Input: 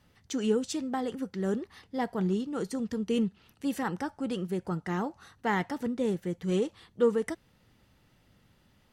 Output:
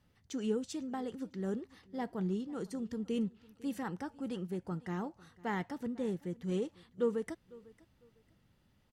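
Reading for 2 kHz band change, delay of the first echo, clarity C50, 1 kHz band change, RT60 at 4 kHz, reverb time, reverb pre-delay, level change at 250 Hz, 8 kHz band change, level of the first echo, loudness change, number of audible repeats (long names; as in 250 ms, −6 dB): −9.0 dB, 501 ms, no reverb audible, −8.5 dB, no reverb audible, no reverb audible, no reverb audible, −6.0 dB, −9.0 dB, −22.0 dB, −6.5 dB, 2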